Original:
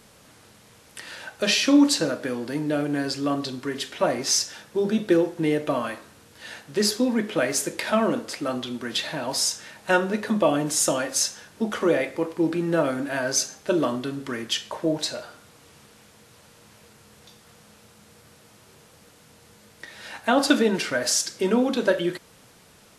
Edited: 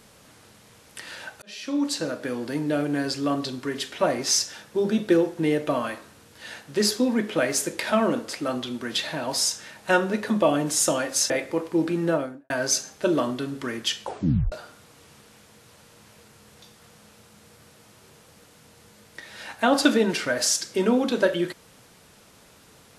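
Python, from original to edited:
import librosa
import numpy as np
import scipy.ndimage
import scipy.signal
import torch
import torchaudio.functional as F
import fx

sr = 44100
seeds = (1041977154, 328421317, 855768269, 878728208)

y = fx.studio_fade_out(x, sr, start_s=12.67, length_s=0.48)
y = fx.edit(y, sr, fx.fade_in_span(start_s=1.42, length_s=1.01),
    fx.cut(start_s=11.3, length_s=0.65),
    fx.tape_stop(start_s=14.68, length_s=0.49), tone=tone)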